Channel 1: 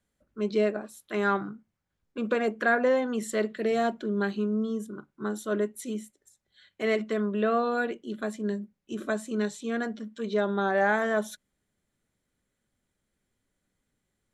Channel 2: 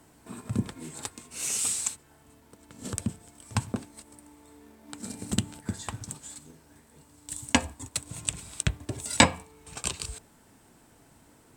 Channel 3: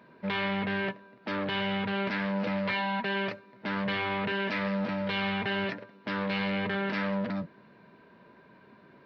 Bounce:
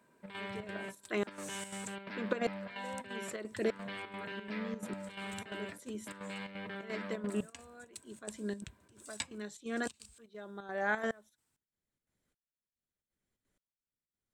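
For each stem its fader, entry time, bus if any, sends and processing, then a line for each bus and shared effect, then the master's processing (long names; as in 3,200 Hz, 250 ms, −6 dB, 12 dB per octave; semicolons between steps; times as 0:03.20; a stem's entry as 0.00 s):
−4.0 dB, 0.00 s, no send, harmonic and percussive parts rebalanced percussive +6 dB; tremolo with a ramp in dB swelling 0.81 Hz, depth 31 dB
−11.5 dB, 0.00 s, no send, guitar amp tone stack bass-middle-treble 5-5-5
−12.0 dB, 0.00 s, no send, high-pass filter 130 Hz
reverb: not used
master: square-wave tremolo 2.9 Hz, depth 60%, duty 75%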